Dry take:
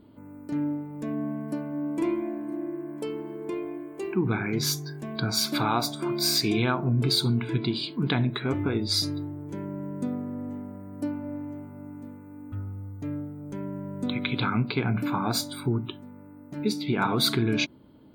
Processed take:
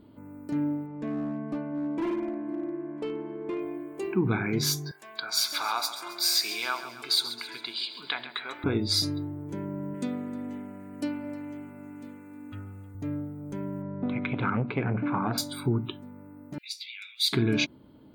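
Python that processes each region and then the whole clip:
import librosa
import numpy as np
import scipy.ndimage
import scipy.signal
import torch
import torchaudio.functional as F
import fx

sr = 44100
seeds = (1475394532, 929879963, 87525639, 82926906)

y = fx.chain(x, sr, fx.lowpass(hz=3700.0, slope=12),
    fx.peak_eq(hz=99.0, db=-4.5, octaves=1.3),
    fx.clip_hard(threshold_db=-26.0), at=(0.86, 3.6))
y = fx.chain(y, sr, fx.highpass(hz=1000.0, slope=12),
    fx.echo_feedback(ms=135, feedback_pct=53, wet_db=-12), at=(4.91, 8.64))
y = fx.chain(y, sr, fx.weighting(curve='D'),
    fx.echo_single(ms=310, db=-19.0), at=(9.94, 12.95))
y = fx.chain(y, sr, fx.lowpass(hz=2400.0, slope=24),
    fx.transformer_sat(knee_hz=390.0), at=(13.82, 15.38))
y = fx.chain(y, sr, fx.steep_highpass(hz=2200.0, slope=48),
    fx.high_shelf(hz=11000.0, db=-10.5), at=(16.58, 17.33))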